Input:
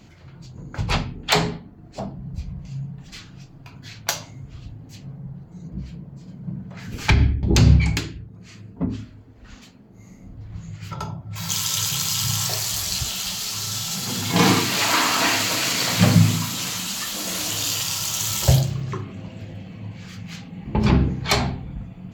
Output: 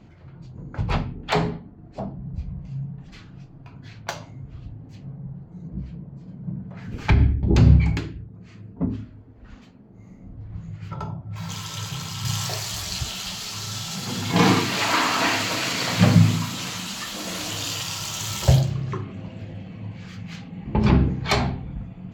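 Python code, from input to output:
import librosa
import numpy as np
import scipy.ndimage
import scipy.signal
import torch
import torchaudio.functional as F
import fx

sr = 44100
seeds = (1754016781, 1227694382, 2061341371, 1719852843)

y = fx.lowpass(x, sr, hz=fx.steps((0.0, 1300.0), (12.25, 3400.0)), slope=6)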